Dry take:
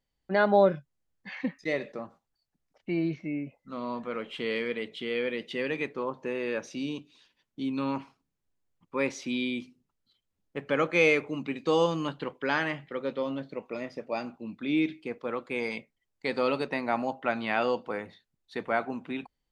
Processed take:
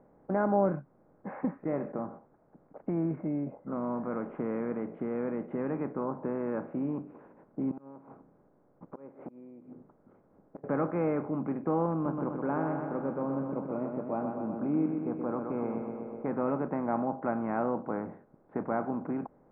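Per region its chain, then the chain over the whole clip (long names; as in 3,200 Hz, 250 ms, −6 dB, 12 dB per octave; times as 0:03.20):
0:07.71–0:10.64: gate with flip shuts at −25 dBFS, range −34 dB + downward compressor 12 to 1, threshold −49 dBFS + saturating transformer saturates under 590 Hz
0:11.93–0:16.26: parametric band 1,900 Hz −15 dB 0.42 octaves + repeating echo 125 ms, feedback 55%, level −7.5 dB
whole clip: compressor on every frequency bin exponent 0.6; Bessel low-pass filter 800 Hz, order 6; dynamic equaliser 490 Hz, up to −8 dB, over −39 dBFS, Q 1.3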